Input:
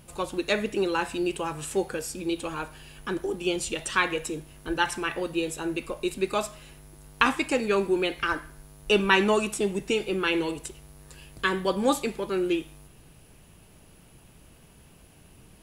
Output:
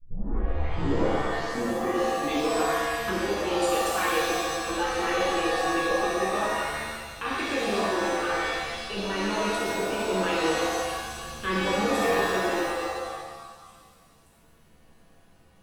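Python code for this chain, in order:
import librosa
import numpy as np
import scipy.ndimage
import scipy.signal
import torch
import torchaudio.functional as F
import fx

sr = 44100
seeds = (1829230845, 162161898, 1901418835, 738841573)

p1 = fx.tape_start_head(x, sr, length_s=2.57)
p2 = fx.hum_notches(p1, sr, base_hz=60, count=5)
p3 = fx.level_steps(p2, sr, step_db=16)
p4 = fx.high_shelf(p3, sr, hz=3300.0, db=-8.0)
p5 = p4 + fx.echo_stepped(p4, sr, ms=578, hz=2600.0, octaves=0.7, feedback_pct=70, wet_db=-11, dry=0)
p6 = fx.rider(p5, sr, range_db=5, speed_s=2.0)
p7 = fx.dynamic_eq(p6, sr, hz=120.0, q=1.2, threshold_db=-52.0, ratio=4.0, max_db=-7)
p8 = fx.buffer_glitch(p7, sr, at_s=(7.96, 9.64, 12.05), block=1024, repeats=5)
p9 = fx.rev_shimmer(p8, sr, seeds[0], rt60_s=1.5, semitones=7, shimmer_db=-2, drr_db=-6.5)
y = p9 * 10.0 ** (-1.0 / 20.0)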